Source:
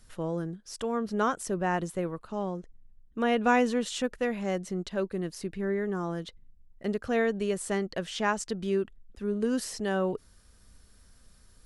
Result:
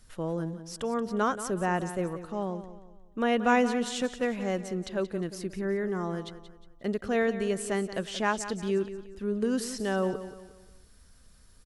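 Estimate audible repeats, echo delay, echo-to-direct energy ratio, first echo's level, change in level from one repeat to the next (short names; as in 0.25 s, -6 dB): 3, 0.179 s, -12.0 dB, -12.5 dB, -8.0 dB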